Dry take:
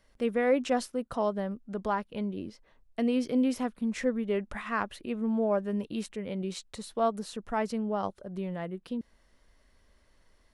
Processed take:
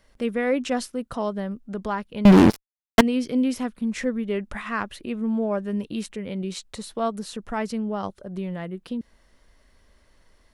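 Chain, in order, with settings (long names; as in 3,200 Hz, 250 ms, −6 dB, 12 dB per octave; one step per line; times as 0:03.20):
dynamic equaliser 680 Hz, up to −5 dB, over −41 dBFS, Q 0.72
0:02.25–0:03.01: fuzz pedal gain 41 dB, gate −48 dBFS
level +5.5 dB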